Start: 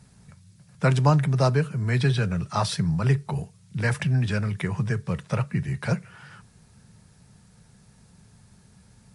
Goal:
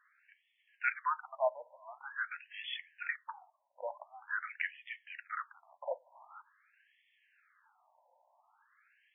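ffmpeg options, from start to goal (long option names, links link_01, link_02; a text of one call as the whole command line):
ffmpeg -i in.wav -filter_complex "[0:a]acrossover=split=640|1200[link_01][link_02][link_03];[link_02]acompressor=threshold=-51dB:ratio=6[link_04];[link_01][link_04][link_03]amix=inputs=3:normalize=0,afftfilt=real='re*between(b*sr/1024,720*pow(2500/720,0.5+0.5*sin(2*PI*0.46*pts/sr))/1.41,720*pow(2500/720,0.5+0.5*sin(2*PI*0.46*pts/sr))*1.41)':imag='im*between(b*sr/1024,720*pow(2500/720,0.5+0.5*sin(2*PI*0.46*pts/sr))/1.41,720*pow(2500/720,0.5+0.5*sin(2*PI*0.46*pts/sr))*1.41)':win_size=1024:overlap=0.75,volume=1dB" out.wav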